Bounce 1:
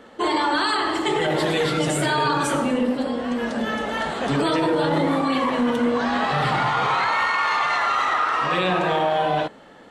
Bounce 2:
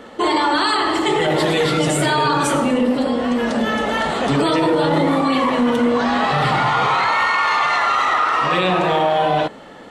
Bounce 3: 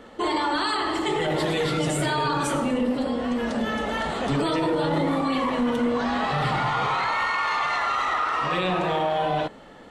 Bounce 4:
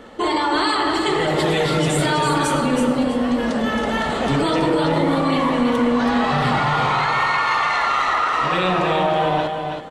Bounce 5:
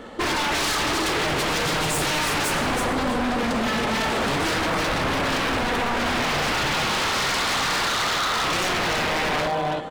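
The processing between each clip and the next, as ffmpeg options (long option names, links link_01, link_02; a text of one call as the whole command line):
ffmpeg -i in.wav -filter_complex "[0:a]bandreject=frequency=1600:width=15,asplit=2[link_01][link_02];[link_02]alimiter=limit=-20.5dB:level=0:latency=1,volume=3dB[link_03];[link_01][link_03]amix=inputs=2:normalize=0" out.wav
ffmpeg -i in.wav -af "lowshelf=frequency=74:gain=11,volume=-7.5dB" out.wav
ffmpeg -i in.wav -af "aecho=1:1:326|652|978:0.501|0.12|0.0289,volume=4.5dB" out.wav
ffmpeg -i in.wav -af "aeval=exprs='0.0944*(abs(mod(val(0)/0.0944+3,4)-2)-1)':channel_layout=same,volume=2dB" out.wav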